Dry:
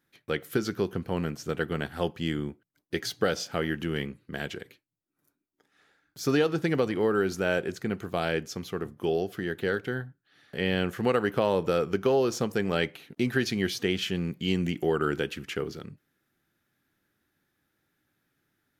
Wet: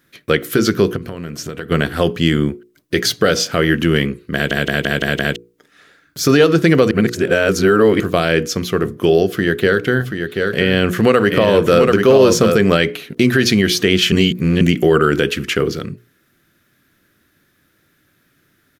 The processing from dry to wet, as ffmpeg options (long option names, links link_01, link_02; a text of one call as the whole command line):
ffmpeg -i in.wav -filter_complex "[0:a]asplit=3[link_01][link_02][link_03];[link_01]afade=type=out:start_time=0.95:duration=0.02[link_04];[link_02]acompressor=threshold=-39dB:ratio=6:attack=3.2:release=140:knee=1:detection=peak,afade=type=in:start_time=0.95:duration=0.02,afade=type=out:start_time=1.7:duration=0.02[link_05];[link_03]afade=type=in:start_time=1.7:duration=0.02[link_06];[link_04][link_05][link_06]amix=inputs=3:normalize=0,asplit=3[link_07][link_08][link_09];[link_07]afade=type=out:start_time=9.99:duration=0.02[link_10];[link_08]aecho=1:1:733:0.473,afade=type=in:start_time=9.99:duration=0.02,afade=type=out:start_time=12.62:duration=0.02[link_11];[link_09]afade=type=in:start_time=12.62:duration=0.02[link_12];[link_10][link_11][link_12]amix=inputs=3:normalize=0,asplit=11[link_13][link_14][link_15][link_16][link_17][link_18][link_19][link_20][link_21][link_22][link_23];[link_13]atrim=end=4.512[link_24];[link_14]atrim=start=4.338:end=4.512[link_25];[link_15]atrim=start=4.338:end=4.512[link_26];[link_16]atrim=start=4.338:end=4.512[link_27];[link_17]atrim=start=4.338:end=4.512[link_28];[link_18]atrim=start=4.338:end=4.512[link_29];[link_19]atrim=start=5.358:end=6.912[link_30];[link_20]atrim=start=6.908:end=8.002,asetpts=PTS-STARTPTS,areverse[link_31];[link_21]atrim=start=7.998:end=14.122[link_32];[link_22]atrim=start=14.118:end=14.612,asetpts=PTS-STARTPTS,areverse[link_33];[link_23]atrim=start=14.608[link_34];[link_24][link_25]acrossfade=duration=0.004:curve1=hsin:curve2=hsin[link_35];[link_35][link_26]acrossfade=duration=0.004:curve1=hsin:curve2=hsin[link_36];[link_36][link_27]acrossfade=duration=0.004:curve1=hsin:curve2=hsin[link_37];[link_37][link_28]acrossfade=duration=0.004:curve1=hsin:curve2=hsin[link_38];[link_38][link_29]acrossfade=duration=0.004:curve1=hsin:curve2=hsin[link_39];[link_39][link_30]acrossfade=duration=0.004:curve1=hsin:curve2=hsin[link_40];[link_40][link_31]acrossfade=duration=0.004:curve1=hsin:curve2=hsin[link_41];[link_41][link_32]acrossfade=duration=0.004:curve1=hsin:curve2=hsin[link_42];[link_42][link_33]acrossfade=duration=0.004:curve1=hsin:curve2=hsin[link_43];[link_43][link_34]acrossfade=duration=0.004:curve1=hsin:curve2=hsin,equalizer=frequency=830:width_type=o:width=0.24:gain=-12.5,bandreject=frequency=60:width_type=h:width=6,bandreject=frequency=120:width_type=h:width=6,bandreject=frequency=180:width_type=h:width=6,bandreject=frequency=240:width_type=h:width=6,bandreject=frequency=300:width_type=h:width=6,bandreject=frequency=360:width_type=h:width=6,bandreject=frequency=420:width_type=h:width=6,bandreject=frequency=480:width_type=h:width=6,alimiter=level_in=17.5dB:limit=-1dB:release=50:level=0:latency=1,volume=-1dB" out.wav